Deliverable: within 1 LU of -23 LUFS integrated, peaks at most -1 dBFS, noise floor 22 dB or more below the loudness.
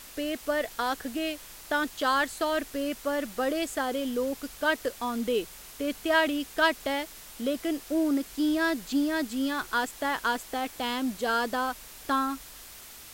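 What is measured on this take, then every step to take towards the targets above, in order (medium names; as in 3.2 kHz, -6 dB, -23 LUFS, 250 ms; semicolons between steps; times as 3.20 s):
noise floor -47 dBFS; noise floor target -51 dBFS; loudness -29.0 LUFS; peak level -11.0 dBFS; loudness target -23.0 LUFS
-> noise print and reduce 6 dB; trim +6 dB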